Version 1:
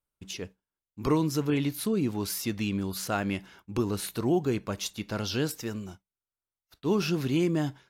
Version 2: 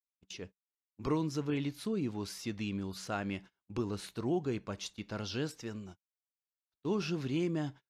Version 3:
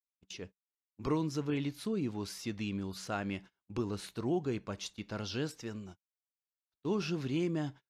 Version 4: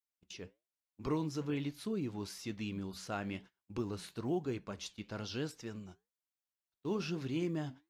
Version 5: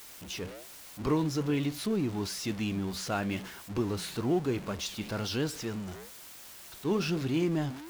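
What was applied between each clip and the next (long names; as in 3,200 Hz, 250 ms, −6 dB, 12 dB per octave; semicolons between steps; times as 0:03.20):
noise gate −41 dBFS, range −27 dB; low-pass filter 6,900 Hz 12 dB per octave; level −7 dB
no processing that can be heard
flanger 1.1 Hz, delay 2.1 ms, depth 7.9 ms, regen −80%; floating-point word with a short mantissa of 6 bits; level +1.5 dB
converter with a step at zero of −44.5 dBFS; level +6 dB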